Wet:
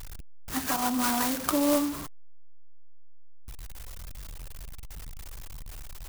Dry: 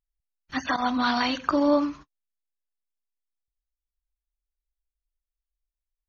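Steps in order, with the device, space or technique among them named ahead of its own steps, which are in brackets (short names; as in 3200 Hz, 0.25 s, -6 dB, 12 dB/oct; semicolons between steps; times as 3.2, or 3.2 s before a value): early CD player with a faulty converter (zero-crossing step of -27.5 dBFS; clock jitter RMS 0.11 ms); gain -4.5 dB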